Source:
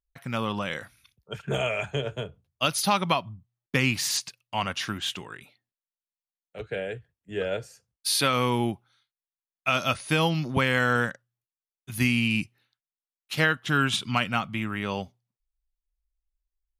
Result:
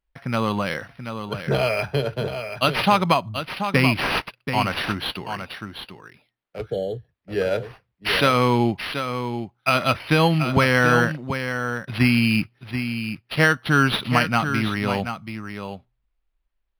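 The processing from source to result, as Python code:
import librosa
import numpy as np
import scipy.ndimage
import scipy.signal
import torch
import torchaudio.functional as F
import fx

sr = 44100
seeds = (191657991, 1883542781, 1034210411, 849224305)

y = fx.spec_repair(x, sr, seeds[0], start_s=6.73, length_s=0.34, low_hz=840.0, high_hz=2900.0, source='both')
y = y + 10.0 ** (-8.5 / 20.0) * np.pad(y, (int(732 * sr / 1000.0), 0))[:len(y)]
y = np.interp(np.arange(len(y)), np.arange(len(y))[::6], y[::6])
y = y * 10.0 ** (6.5 / 20.0)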